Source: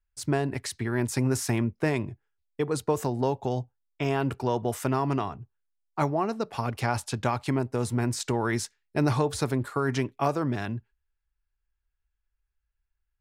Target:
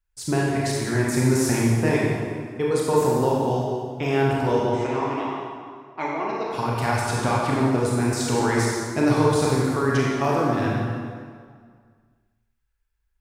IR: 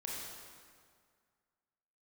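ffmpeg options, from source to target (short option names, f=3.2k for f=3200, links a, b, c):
-filter_complex "[0:a]asettb=1/sr,asplit=3[a][b][c];[a]atrim=end=4.694[d];[b]atrim=start=4.69:end=6.46,asetpts=PTS-STARTPTS,afade=t=in:d=0.004:c=qsin,afade=t=out:st=1.766:d=0.004:c=qsin,highpass=380,equalizer=f=500:t=q:w=4:g=-7,equalizer=f=710:t=q:w=4:g=-6,equalizer=f=1.3k:t=q:w=4:g=-9,equalizer=f=2.1k:t=q:w=4:g=6,equalizer=f=4.7k:t=q:w=4:g=-8,lowpass=f=5.2k:w=0.5412,lowpass=f=5.2k:w=1.3066[e];[c]atrim=start=6.456[f];[d][e]acrossfade=d=0.004:c1=hsin:c2=qsin[g];[g][f]acrossfade=d=0.004:c1=qsin:c2=hsin[h];[1:a]atrim=start_sample=2205[i];[h][i]afir=irnorm=-1:irlink=0,volume=6dB"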